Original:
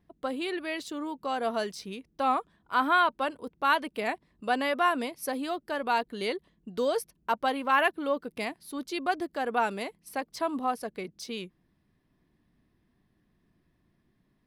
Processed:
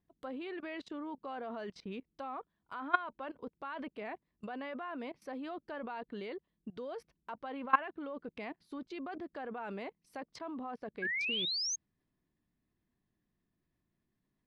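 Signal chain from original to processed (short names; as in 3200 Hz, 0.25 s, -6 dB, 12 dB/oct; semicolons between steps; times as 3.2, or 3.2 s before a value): level quantiser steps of 21 dB; treble ducked by the level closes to 2500 Hz, closed at -42 dBFS; painted sound rise, 11.02–11.76, 1600–6600 Hz -36 dBFS; gain +1 dB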